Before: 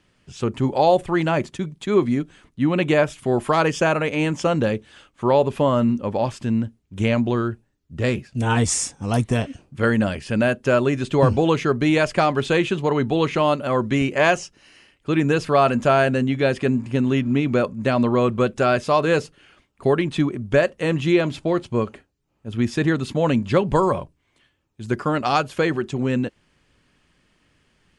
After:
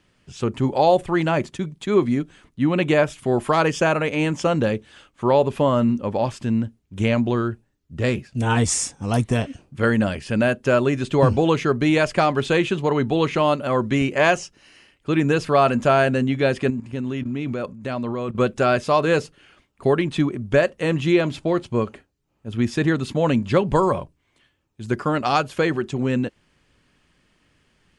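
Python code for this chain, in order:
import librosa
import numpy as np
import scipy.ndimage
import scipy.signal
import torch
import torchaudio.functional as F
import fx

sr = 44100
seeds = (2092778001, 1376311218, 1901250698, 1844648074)

y = fx.level_steps(x, sr, step_db=13, at=(16.7, 18.35))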